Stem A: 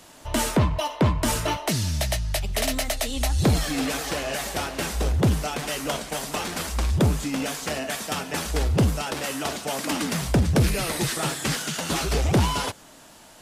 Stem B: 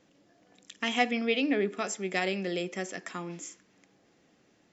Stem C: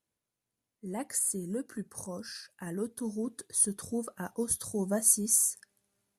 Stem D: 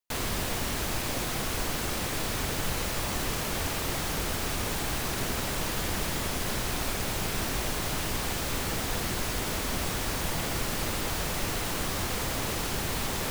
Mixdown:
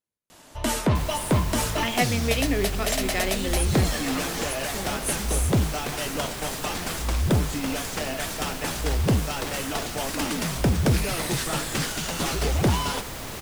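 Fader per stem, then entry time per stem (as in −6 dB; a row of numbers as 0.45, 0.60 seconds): −1.5, +1.5, −6.0, −4.5 decibels; 0.30, 1.00, 0.00, 0.85 seconds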